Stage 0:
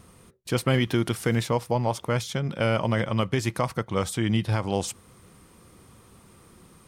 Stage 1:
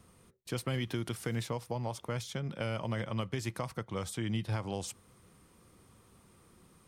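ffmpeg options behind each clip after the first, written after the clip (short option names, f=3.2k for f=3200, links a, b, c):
-filter_complex "[0:a]acrossover=split=130|3000[a][b][c];[b]acompressor=threshold=-24dB:ratio=6[d];[a][d][c]amix=inputs=3:normalize=0,volume=-8.5dB"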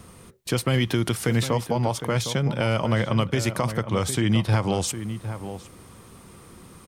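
-filter_complex "[0:a]asplit=2[a][b];[b]alimiter=level_in=4dB:limit=-24dB:level=0:latency=1:release=161,volume=-4dB,volume=2dB[c];[a][c]amix=inputs=2:normalize=0,asplit=2[d][e];[e]adelay=758,volume=-10dB,highshelf=f=4k:g=-17.1[f];[d][f]amix=inputs=2:normalize=0,volume=7dB"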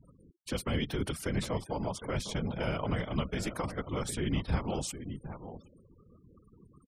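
-af "afftfilt=real='hypot(re,im)*cos(2*PI*random(0))':imag='hypot(re,im)*sin(2*PI*random(1))':win_size=512:overlap=0.75,afftfilt=real='re*gte(hypot(re,im),0.00562)':imag='im*gte(hypot(re,im),0.00562)':win_size=1024:overlap=0.75,volume=-4dB"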